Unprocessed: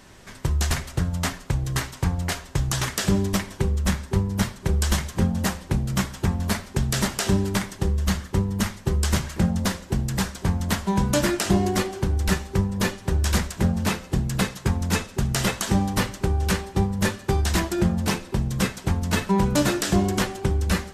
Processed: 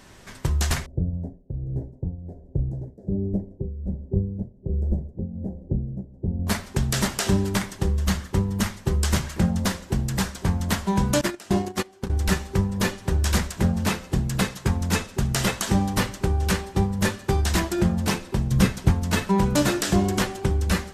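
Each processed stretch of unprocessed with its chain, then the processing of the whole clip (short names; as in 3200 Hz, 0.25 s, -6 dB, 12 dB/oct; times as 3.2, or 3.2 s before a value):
0.86–6.47 inverse Chebyshev low-pass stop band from 1100 Hz + tremolo triangle 1.3 Hz, depth 75%
11.21–12.1 gate -22 dBFS, range -18 dB + low shelf 110 Hz -8 dB
18.51–18.91 low shelf 220 Hz +9.5 dB + notch 7700 Hz, Q 17
whole clip: dry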